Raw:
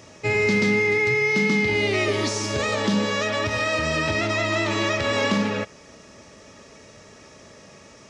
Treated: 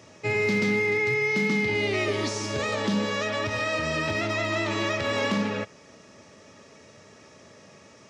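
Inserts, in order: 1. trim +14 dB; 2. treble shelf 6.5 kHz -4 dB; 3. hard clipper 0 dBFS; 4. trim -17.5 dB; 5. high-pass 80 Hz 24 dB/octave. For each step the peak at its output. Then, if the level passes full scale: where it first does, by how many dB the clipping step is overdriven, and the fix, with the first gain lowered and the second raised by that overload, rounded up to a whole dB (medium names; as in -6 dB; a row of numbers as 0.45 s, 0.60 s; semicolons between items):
+4.0 dBFS, +4.0 dBFS, 0.0 dBFS, -17.5 dBFS, -14.5 dBFS; step 1, 4.0 dB; step 1 +10 dB, step 4 -13.5 dB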